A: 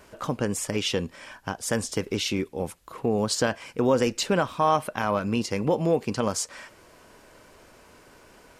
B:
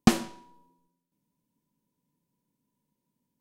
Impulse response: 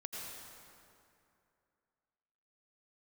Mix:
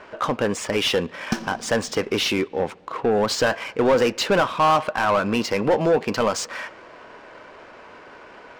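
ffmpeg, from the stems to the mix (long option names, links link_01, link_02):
-filter_complex "[0:a]lowpass=9600,asplit=2[link_01][link_02];[link_02]highpass=frequency=720:poles=1,volume=19dB,asoftclip=type=tanh:threshold=-9dB[link_03];[link_01][link_03]amix=inputs=2:normalize=0,lowpass=frequency=2700:poles=1,volume=-6dB,volume=0dB,asplit=2[link_04][link_05];[link_05]volume=-23.5dB[link_06];[1:a]equalizer=frequency=5600:width_type=o:width=0.27:gain=10.5,adelay=1250,volume=-8.5dB,asplit=2[link_07][link_08];[link_08]volume=-4.5dB[link_09];[2:a]atrim=start_sample=2205[link_10];[link_06][link_09]amix=inputs=2:normalize=0[link_11];[link_11][link_10]afir=irnorm=-1:irlink=0[link_12];[link_04][link_07][link_12]amix=inputs=3:normalize=0,adynamicsmooth=sensitivity=7:basefreq=3200"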